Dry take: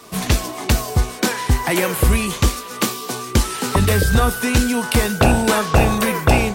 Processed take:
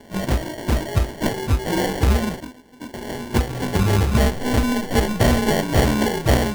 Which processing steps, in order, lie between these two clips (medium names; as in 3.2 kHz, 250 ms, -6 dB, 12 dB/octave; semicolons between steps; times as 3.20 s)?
frequency axis rescaled in octaves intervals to 91%; 2.40–2.94 s: vowel filter i; sample-and-hold 35×